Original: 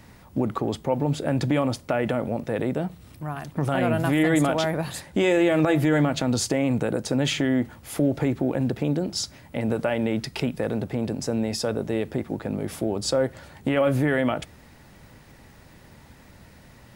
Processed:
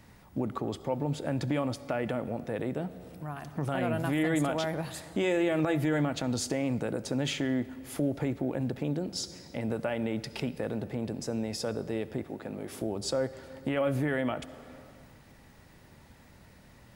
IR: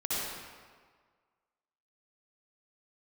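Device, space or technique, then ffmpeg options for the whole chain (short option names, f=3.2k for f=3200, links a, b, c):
ducked reverb: -filter_complex "[0:a]asettb=1/sr,asplit=3[a][b][c];[a]atrim=end=12.294[d];[b]atrim=start=12.29:end=12.82,asetpts=PTS-STARTPTS,afade=t=in:d=0.004:c=qsin,afade=t=out:st=0.526:d=0.004:c=qsin,lowshelf=f=170:g=-10.5[e];[c]atrim=start=12.816[f];[d][e]acrossfade=d=0.004:c1=hsin:c2=qsin[g];[g][f]acrossfade=d=0.004:c1=qsin:c2=hsin,asplit=3[h][i][j];[1:a]atrim=start_sample=2205[k];[i][k]afir=irnorm=-1:irlink=0[l];[j]apad=whole_len=747529[m];[l][m]sidechaincompress=threshold=-29dB:ratio=8:attack=10:release=502,volume=-14dB[n];[h][n]amix=inputs=2:normalize=0,volume=-7.5dB"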